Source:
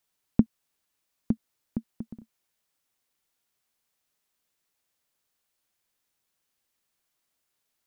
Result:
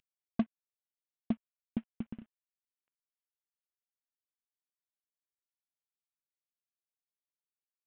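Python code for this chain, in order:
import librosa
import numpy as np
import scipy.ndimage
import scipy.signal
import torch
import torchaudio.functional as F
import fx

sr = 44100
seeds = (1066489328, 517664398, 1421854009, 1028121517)

y = fx.cvsd(x, sr, bps=16000)
y = 10.0 ** (-21.5 / 20.0) * np.tanh(y / 10.0 ** (-21.5 / 20.0))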